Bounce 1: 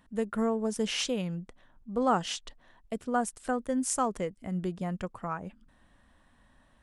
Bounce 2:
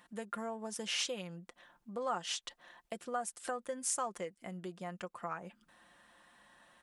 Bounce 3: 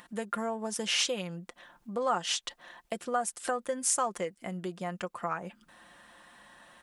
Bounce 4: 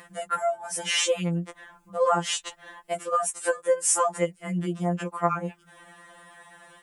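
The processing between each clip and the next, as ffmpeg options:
-af "aecho=1:1:5.7:0.47,acompressor=threshold=0.00891:ratio=2.5,highpass=f=710:p=1,volume=1.78"
-af "acompressor=mode=upward:threshold=0.00112:ratio=2.5,volume=2.24"
-af "afftfilt=real='re*2.83*eq(mod(b,8),0)':imag='im*2.83*eq(mod(b,8),0)':win_size=2048:overlap=0.75,volume=2.24"

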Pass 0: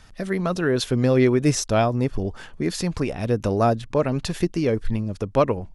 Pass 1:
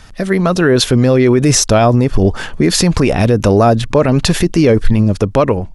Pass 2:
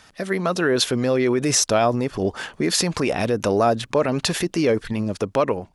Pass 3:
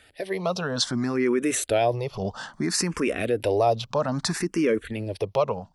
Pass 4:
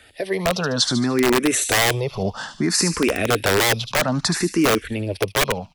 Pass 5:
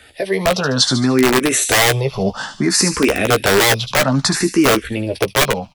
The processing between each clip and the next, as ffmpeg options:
-af "dynaudnorm=f=280:g=5:m=2.66,alimiter=level_in=3.76:limit=0.891:release=50:level=0:latency=1,volume=0.891"
-af "highpass=f=350:p=1,volume=0.501"
-filter_complex "[0:a]bandreject=f=6700:w=15,asplit=2[s0][s1];[s1]afreqshift=0.61[s2];[s0][s2]amix=inputs=2:normalize=1,volume=0.841"
-filter_complex "[0:a]acrossover=split=220|2500[s0][s1][s2];[s1]aeval=exprs='(mod(7.5*val(0)+1,2)-1)/7.5':c=same[s3];[s2]aecho=1:1:74|148|222|296|370:0.531|0.234|0.103|0.0452|0.0199[s4];[s0][s3][s4]amix=inputs=3:normalize=0,volume=1.88"
-filter_complex "[0:a]asplit=2[s0][s1];[s1]adelay=15,volume=0.447[s2];[s0][s2]amix=inputs=2:normalize=0,volume=1.58"

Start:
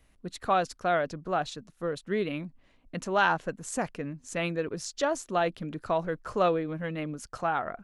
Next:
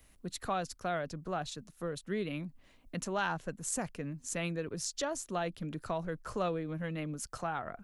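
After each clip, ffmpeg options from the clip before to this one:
-filter_complex "[0:a]acrossover=split=180[s0][s1];[s1]acompressor=threshold=0.00398:ratio=1.5[s2];[s0][s2]amix=inputs=2:normalize=0,crystalizer=i=1.5:c=0"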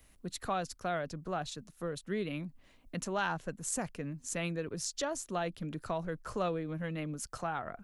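-af anull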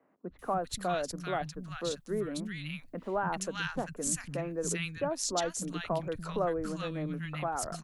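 -filter_complex "[0:a]acrossover=split=200|1400[s0][s1][s2];[s0]adelay=290[s3];[s2]adelay=390[s4];[s3][s1][s4]amix=inputs=3:normalize=0,volume=1.58"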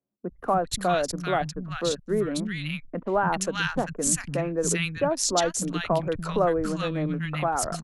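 -af "anlmdn=0.00631,volume=2.51"

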